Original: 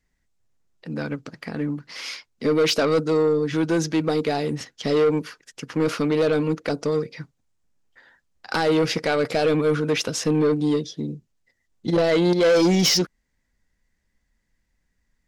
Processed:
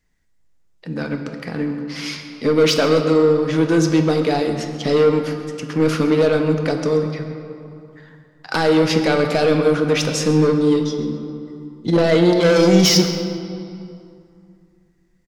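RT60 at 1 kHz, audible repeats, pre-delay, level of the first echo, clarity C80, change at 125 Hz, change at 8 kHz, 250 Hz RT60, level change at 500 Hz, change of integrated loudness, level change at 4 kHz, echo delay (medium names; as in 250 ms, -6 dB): 2.6 s, 1, 6 ms, -16.0 dB, 7.0 dB, +6.5 dB, +3.5 dB, 2.9 s, +4.5 dB, +4.5 dB, +4.0 dB, 134 ms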